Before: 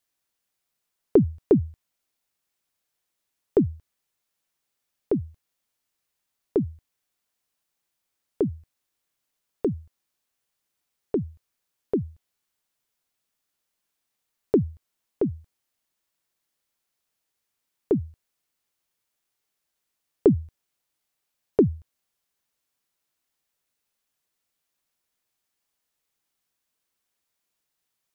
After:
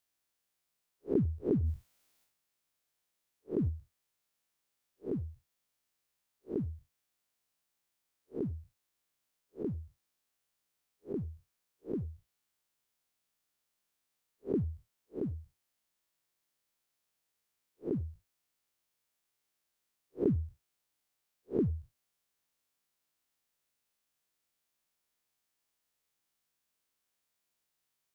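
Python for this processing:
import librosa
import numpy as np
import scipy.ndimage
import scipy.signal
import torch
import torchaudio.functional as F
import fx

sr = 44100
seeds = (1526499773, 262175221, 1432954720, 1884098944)

y = fx.spec_blur(x, sr, span_ms=97.0)
y = fx.transient(y, sr, attack_db=-2, sustain_db=10, at=(1.62, 3.68), fade=0.02)
y = y * 10.0 ** (-1.5 / 20.0)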